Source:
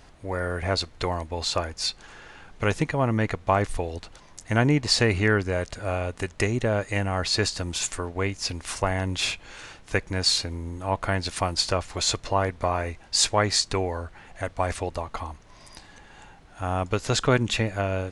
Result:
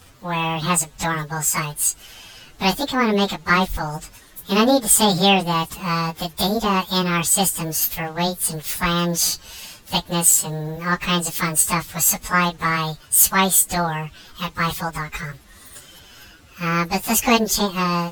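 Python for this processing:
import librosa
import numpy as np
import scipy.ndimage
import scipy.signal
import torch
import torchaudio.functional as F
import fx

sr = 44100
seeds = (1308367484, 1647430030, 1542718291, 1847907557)

y = fx.pitch_bins(x, sr, semitones=10.5)
y = fx.high_shelf(y, sr, hz=3300.0, db=7.0)
y = y * librosa.db_to_amplitude(6.5)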